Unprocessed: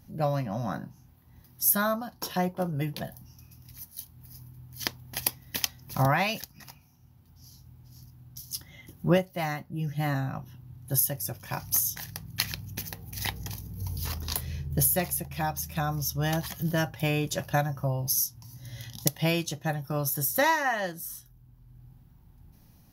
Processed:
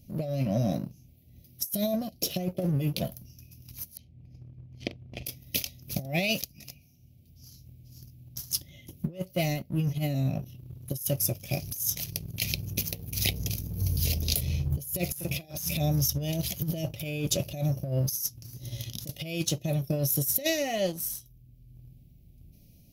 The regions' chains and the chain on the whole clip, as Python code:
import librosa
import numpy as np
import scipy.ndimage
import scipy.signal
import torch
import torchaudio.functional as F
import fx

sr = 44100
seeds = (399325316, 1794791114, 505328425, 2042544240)

y = fx.chain(x, sr, fx.lowpass(hz=1800.0, slope=12),
    fx.doubler(ms=43.0, db=-13.5), at=(3.97, 5.26))
y = fx.chain(y, sr, fx.highpass(hz=140.0, slope=12),
    fx.doubler(ms=41.0, db=-5.0),
    fx.over_compress(threshold_db=-40.0, ratio=-1.0), at=(15.12, 15.77))
y = scipy.signal.sosfilt(scipy.signal.ellip(3, 1.0, 40, [640.0, 2300.0], 'bandstop', fs=sr, output='sos'), y)
y = fx.leveller(y, sr, passes=1)
y = fx.over_compress(y, sr, threshold_db=-27.0, ratio=-0.5)